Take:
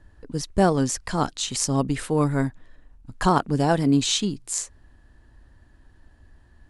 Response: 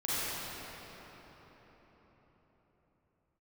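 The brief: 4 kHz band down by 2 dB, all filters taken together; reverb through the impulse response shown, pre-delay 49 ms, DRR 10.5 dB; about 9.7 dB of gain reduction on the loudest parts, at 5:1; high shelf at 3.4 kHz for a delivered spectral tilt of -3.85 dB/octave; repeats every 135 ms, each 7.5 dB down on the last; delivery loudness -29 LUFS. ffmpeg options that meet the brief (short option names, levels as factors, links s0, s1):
-filter_complex "[0:a]highshelf=f=3400:g=7.5,equalizer=f=4000:t=o:g=-8,acompressor=threshold=0.0562:ratio=5,aecho=1:1:135|270|405|540|675:0.422|0.177|0.0744|0.0312|0.0131,asplit=2[s0][s1];[1:a]atrim=start_sample=2205,adelay=49[s2];[s1][s2]afir=irnorm=-1:irlink=0,volume=0.106[s3];[s0][s3]amix=inputs=2:normalize=0,volume=0.944"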